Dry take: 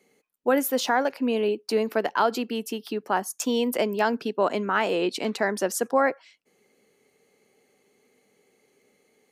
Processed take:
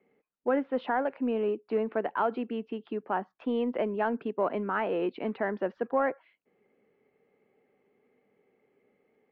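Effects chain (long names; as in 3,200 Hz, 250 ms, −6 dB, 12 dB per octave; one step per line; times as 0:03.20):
in parallel at −9 dB: soft clipping −23.5 dBFS, distortion −8 dB
on the sum: Bessel low-pass filter 1,700 Hz, order 8
floating-point word with a short mantissa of 8 bits
level −6 dB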